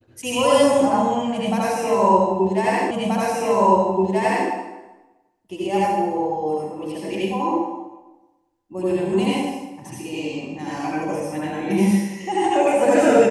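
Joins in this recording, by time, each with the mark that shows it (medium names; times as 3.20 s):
2.91 s: repeat of the last 1.58 s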